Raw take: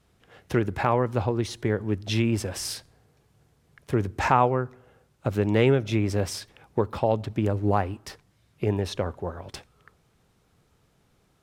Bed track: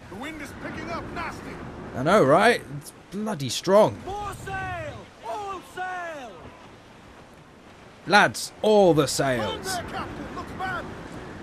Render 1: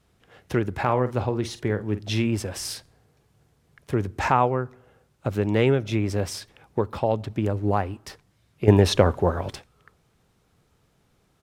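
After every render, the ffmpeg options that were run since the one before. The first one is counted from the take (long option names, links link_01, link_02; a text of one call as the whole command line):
ffmpeg -i in.wav -filter_complex "[0:a]asplit=3[link_01][link_02][link_03];[link_01]afade=type=out:start_time=0.85:duration=0.02[link_04];[link_02]asplit=2[link_05][link_06];[link_06]adelay=48,volume=-12dB[link_07];[link_05][link_07]amix=inputs=2:normalize=0,afade=type=in:start_time=0.85:duration=0.02,afade=type=out:start_time=2.26:duration=0.02[link_08];[link_03]afade=type=in:start_time=2.26:duration=0.02[link_09];[link_04][link_08][link_09]amix=inputs=3:normalize=0,asplit=3[link_10][link_11][link_12];[link_10]atrim=end=8.682[link_13];[link_11]atrim=start=8.678:end=9.542,asetpts=PTS-STARTPTS,volume=10.5dB[link_14];[link_12]atrim=start=9.538[link_15];[link_13][link_14]acrossfade=duration=0.004:curve1=hsin:curve2=hsin[link_16];[link_16][link_15]acrossfade=duration=0.004:curve1=hsin:curve2=hsin" out.wav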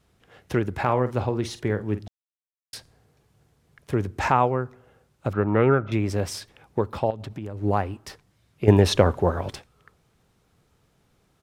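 ffmpeg -i in.wav -filter_complex "[0:a]asettb=1/sr,asplit=3[link_01][link_02][link_03];[link_01]atrim=end=5.334[link_04];[link_02]atrim=start=5.33:end=5.92,asetpts=PTS-STARTPTS,afade=type=in:duration=0.004:curve=qsin,afade=type=out:start_time=0.586:duration=0.004:curve=qsin,lowpass=frequency=1300:width_type=q:width=8.2[link_05];[link_03]atrim=start=5.916[link_06];[link_04][link_05]acrossfade=duration=0.004:curve1=hsin:curve2=qsin[link_07];[link_07][link_06]acrossfade=duration=0.004:curve1=qsin:curve2=hsin,asettb=1/sr,asplit=3[link_08][link_09][link_10];[link_08]atrim=end=7.104[link_11];[link_09]atrim=start=7.1:end=7.62,asetpts=PTS-STARTPTS,afade=type=in:duration=0.004:curve=qsin,afade=type=out:start_time=0.516:duration=0.004:curve=qsin,acompressor=threshold=-30dB:ratio=6:attack=3.2:release=140:knee=1:detection=peak[link_12];[link_10]atrim=start=7.616[link_13];[link_11][link_12]acrossfade=duration=0.004:curve1=hsin:curve2=qsin[link_14];[link_14][link_13]acrossfade=duration=0.004:curve1=qsin:curve2=hsin,asplit=3[link_15][link_16][link_17];[link_15]atrim=end=2.08,asetpts=PTS-STARTPTS,afade=type=out:start_time=2.076:duration=0.004:curve=hsin[link_18];[link_16]atrim=start=2.08:end=2.73,asetpts=PTS-STARTPTS,volume=0[link_19];[link_17]atrim=start=2.73,asetpts=PTS-STARTPTS,afade=type=in:duration=0.004:curve=hsin[link_20];[link_18][link_19][link_20]concat=n=3:v=0:a=1" out.wav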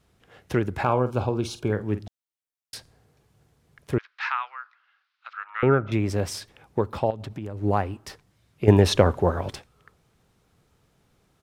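ffmpeg -i in.wav -filter_complex "[0:a]asettb=1/sr,asplit=3[link_01][link_02][link_03];[link_01]atrim=end=0.844[link_04];[link_02]atrim=start=0.84:end=1.73,asetpts=PTS-STARTPTS,afade=type=in:duration=0.004:curve=qsin,afade=type=out:start_time=0.886:duration=0.004:curve=qsin,asuperstop=centerf=1900:order=8:qfactor=3.7[link_05];[link_03]atrim=start=1.726[link_06];[link_04][link_05]acrossfade=duration=0.004:curve1=hsin:curve2=qsin[link_07];[link_07][link_06]acrossfade=duration=0.004:curve1=qsin:curve2=hsin,asettb=1/sr,asplit=3[link_08][link_09][link_10];[link_08]atrim=end=3.984[link_11];[link_09]atrim=start=3.98:end=5.63,asetpts=PTS-STARTPTS,afade=type=in:duration=0.004:curve=qsin,afade=type=out:start_time=1.646:duration=0.004:curve=qsin,asuperpass=centerf=2400:order=8:qfactor=0.68[link_12];[link_10]atrim=start=5.626[link_13];[link_11][link_12]acrossfade=duration=0.004:curve1=hsin:curve2=qsin[link_14];[link_14][link_13]acrossfade=duration=0.004:curve1=qsin:curve2=hsin" out.wav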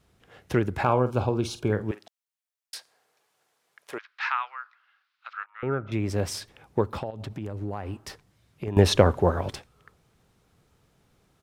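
ffmpeg -i in.wav -filter_complex "[0:a]asettb=1/sr,asplit=3[link_01][link_02][link_03];[link_01]atrim=end=1.914[link_04];[link_02]atrim=start=1.91:end=4.08,asetpts=PTS-STARTPTS,afade=type=in:duration=0.004:curve=qsin,afade=type=out:start_time=2.166:duration=0.004:curve=qsin,highpass=700[link_05];[link_03]atrim=start=4.076[link_06];[link_04][link_05]acrossfade=duration=0.004:curve1=hsin:curve2=qsin[link_07];[link_07][link_06]acrossfade=duration=0.004:curve1=qsin:curve2=hsin,asettb=1/sr,asplit=3[link_08][link_09][link_10];[link_08]atrim=end=7.004[link_11];[link_09]atrim=start=7:end=8.77,asetpts=PTS-STARTPTS,afade=type=in:duration=0.004:curve=qsin,afade=type=out:start_time=1.766:duration=0.004:curve=qsin,acompressor=threshold=-28dB:ratio=6:attack=3.2:release=140:knee=1:detection=peak[link_12];[link_10]atrim=start=8.766[link_13];[link_11][link_12]acrossfade=duration=0.004:curve1=hsin:curve2=qsin[link_14];[link_14][link_13]acrossfade=duration=0.004:curve1=qsin:curve2=hsin,asplit=2[link_15][link_16];[link_15]atrim=end=5.46,asetpts=PTS-STARTPTS,afade=type=out:start_time=5.456:duration=0.004:curve=hsin:silence=0.112202[link_17];[link_16]atrim=start=5.46,asetpts=PTS-STARTPTS,afade=type=in:duration=0.85:silence=0.112202[link_18];[link_17][link_18]concat=n=2:v=0:a=1" out.wav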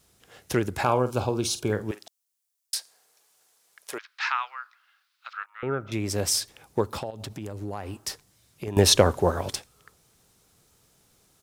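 ffmpeg -i in.wav -af "bass=frequency=250:gain=-3,treble=frequency=4000:gain=13" out.wav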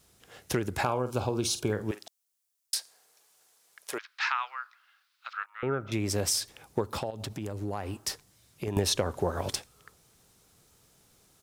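ffmpeg -i in.wav -af "acompressor=threshold=-24dB:ratio=6" out.wav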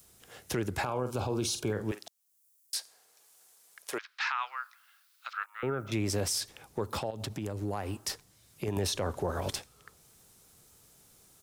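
ffmpeg -i in.wav -filter_complex "[0:a]acrossover=split=110|7200[link_01][link_02][link_03];[link_03]acompressor=mode=upward:threshold=-55dB:ratio=2.5[link_04];[link_01][link_02][link_04]amix=inputs=3:normalize=0,alimiter=limit=-22dB:level=0:latency=1:release=14" out.wav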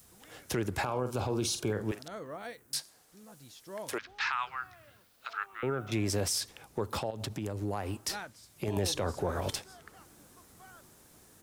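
ffmpeg -i in.wav -i bed.wav -filter_complex "[1:a]volume=-25dB[link_01];[0:a][link_01]amix=inputs=2:normalize=0" out.wav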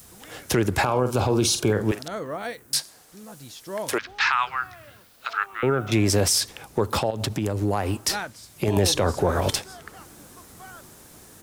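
ffmpeg -i in.wav -af "volume=10.5dB" out.wav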